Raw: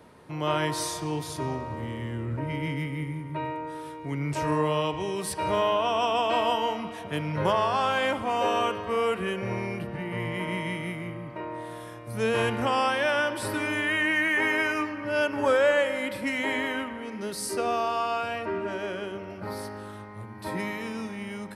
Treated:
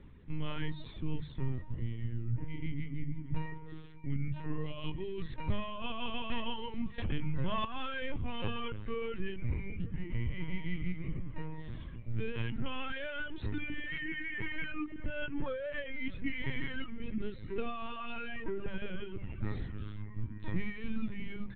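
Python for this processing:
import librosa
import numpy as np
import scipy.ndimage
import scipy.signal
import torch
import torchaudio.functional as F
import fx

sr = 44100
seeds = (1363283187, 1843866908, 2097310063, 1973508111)

y = fx.echo_feedback(x, sr, ms=308, feedback_pct=60, wet_db=-18.5)
y = fx.dereverb_blind(y, sr, rt60_s=1.1)
y = fx.high_shelf(y, sr, hz=2400.0, db=7.0, at=(19.23, 19.93))
y = fx.lpc_vocoder(y, sr, seeds[0], excitation='pitch_kept', order=16)
y = fx.curve_eq(y, sr, hz=(120.0, 250.0, 700.0, 2200.0), db=(0, -8, -27, -14))
y = fx.rider(y, sr, range_db=4, speed_s=0.5)
y = fx.hum_notches(y, sr, base_hz=50, count=4)
y = fx.env_flatten(y, sr, amount_pct=70, at=(6.98, 7.65))
y = y * librosa.db_to_amplitude(6.0)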